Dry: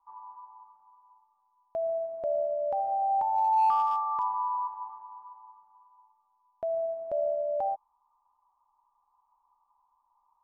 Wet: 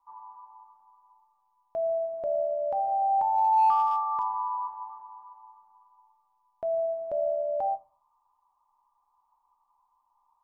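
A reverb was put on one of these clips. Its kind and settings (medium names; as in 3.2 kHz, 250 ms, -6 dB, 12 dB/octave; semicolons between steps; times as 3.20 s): simulated room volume 200 m³, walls furnished, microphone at 0.42 m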